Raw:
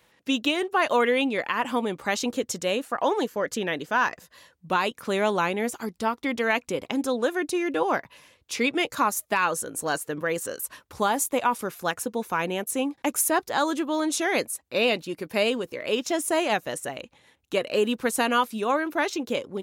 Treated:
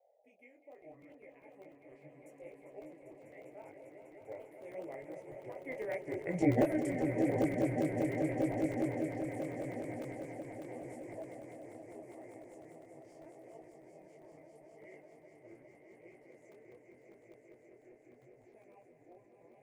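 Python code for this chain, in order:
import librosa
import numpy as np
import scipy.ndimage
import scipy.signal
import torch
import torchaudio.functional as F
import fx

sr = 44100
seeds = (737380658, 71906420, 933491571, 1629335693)

y = fx.pitch_ramps(x, sr, semitones=-12.0, every_ms=1212)
y = fx.doppler_pass(y, sr, speed_mps=32, closest_m=3.5, pass_at_s=6.54)
y = fx.peak_eq(y, sr, hz=180.0, db=8.5, octaves=1.2)
y = fx.echo_swell(y, sr, ms=199, loudest=5, wet_db=-8.0)
y = fx.dmg_noise_band(y, sr, seeds[0], low_hz=480.0, high_hz=810.0, level_db=-76.0)
y = fx.curve_eq(y, sr, hz=(130.0, 200.0, 320.0, 600.0, 1400.0, 2100.0, 3700.0, 9400.0), db=(0, -17, 5, 12, -17, 9, -23, 4))
y = fx.buffer_crackle(y, sr, first_s=0.62, period_s=0.1, block=128, kind='zero')
y = fx.detune_double(y, sr, cents=28)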